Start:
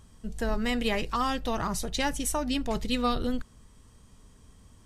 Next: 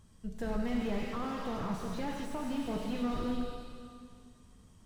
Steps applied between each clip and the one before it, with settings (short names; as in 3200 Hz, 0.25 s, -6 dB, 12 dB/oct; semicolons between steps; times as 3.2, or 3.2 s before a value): bell 160 Hz +4.5 dB 1.2 oct; plate-style reverb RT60 2.2 s, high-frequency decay 1×, DRR 2 dB; slew limiter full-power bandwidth 33 Hz; gain -7.5 dB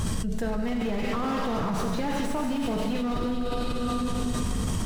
fast leveller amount 100%; gain +2.5 dB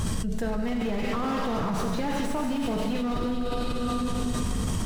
nothing audible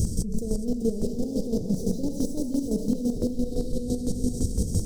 elliptic band-stop 470–5300 Hz, stop band 60 dB; thinning echo 0.42 s, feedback 55%, level -6 dB; chopper 5.9 Hz, depth 60%, duty 30%; gain +6 dB